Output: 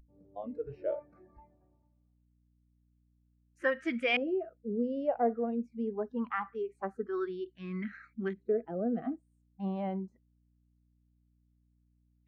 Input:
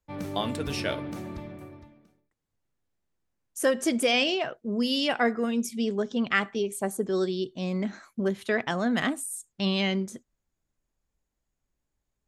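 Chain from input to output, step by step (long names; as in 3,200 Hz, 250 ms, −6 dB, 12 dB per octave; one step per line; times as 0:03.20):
mains hum 60 Hz, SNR 11 dB
auto-filter low-pass saw up 0.24 Hz 420–2,300 Hz
noise reduction from a noise print of the clip's start 22 dB
level −7.5 dB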